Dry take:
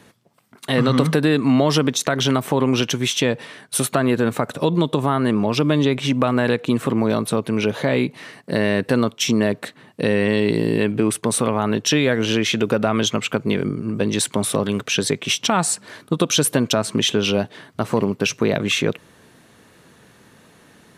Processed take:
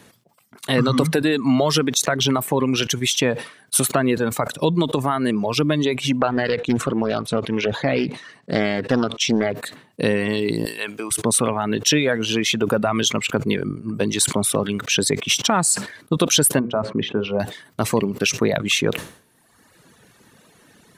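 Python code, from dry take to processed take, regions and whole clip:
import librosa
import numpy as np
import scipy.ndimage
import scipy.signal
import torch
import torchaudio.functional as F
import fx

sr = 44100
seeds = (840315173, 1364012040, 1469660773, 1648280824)

y = fx.chain(x, sr, fx.lowpass(hz=5400.0, slope=12),
    fx.doppler_dist(depth_ms=0.33), at=(6.21, 9.55))
y = fx.chain(y, sr, fx.highpass(hz=1000.0, slope=6),
    fx.high_shelf(hz=6000.0, db=5.5), at=(10.65, 11.11))
y = fx.chain(y, sr, fx.lowpass(hz=1300.0, slope=12),
    fx.low_shelf(hz=150.0, db=-4.5),
    fx.hum_notches(base_hz=60, count=9), at=(16.59, 17.4))
y = fx.dereverb_blind(y, sr, rt60_s=1.3)
y = fx.high_shelf(y, sr, hz=5100.0, db=5.0)
y = fx.sustainer(y, sr, db_per_s=120.0)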